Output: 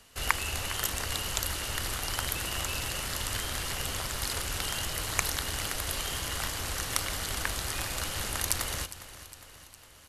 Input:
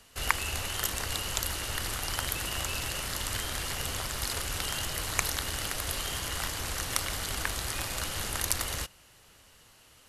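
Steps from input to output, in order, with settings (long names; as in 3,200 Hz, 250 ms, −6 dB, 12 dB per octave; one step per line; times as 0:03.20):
repeating echo 408 ms, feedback 57%, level −15 dB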